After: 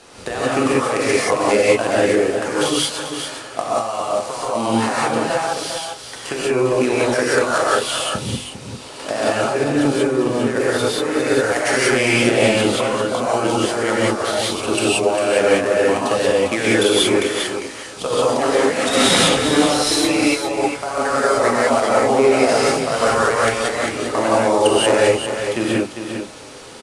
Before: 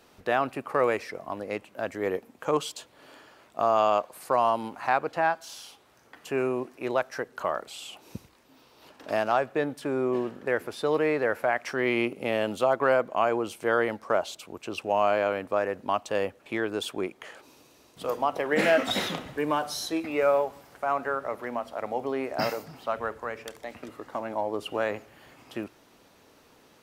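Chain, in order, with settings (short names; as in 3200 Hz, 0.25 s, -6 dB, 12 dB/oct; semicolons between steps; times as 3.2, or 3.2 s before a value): switching dead time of 0.063 ms; high shelf 6000 Hz +9.5 dB; notches 50/100/150/200/250/300/350 Hz; in parallel at +1.5 dB: limiter -19 dBFS, peak gain reduction 12 dB; on the sum: negative-ratio compressor -24 dBFS, ratio -0.5; elliptic low-pass 9700 Hz, stop band 60 dB; on a send: echo 0.4 s -8 dB; on the sum: non-linear reverb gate 0.21 s rising, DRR -6.5 dB; gain +2 dB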